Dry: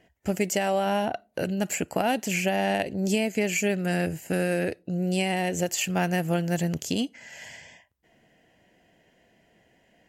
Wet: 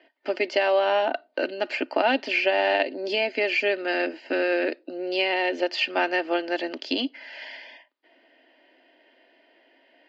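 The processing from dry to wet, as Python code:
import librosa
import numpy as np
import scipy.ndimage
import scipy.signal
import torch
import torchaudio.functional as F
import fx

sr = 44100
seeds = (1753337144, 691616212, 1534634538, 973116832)

y = scipy.signal.sosfilt(scipy.signal.cheby1(5, 1.0, [260.0, 4800.0], 'bandpass', fs=sr, output='sos'), x)
y = fx.low_shelf(y, sr, hz=340.0, db=-7.0)
y = y + 0.39 * np.pad(y, (int(3.3 * sr / 1000.0), 0))[:len(y)]
y = y * 10.0 ** (5.5 / 20.0)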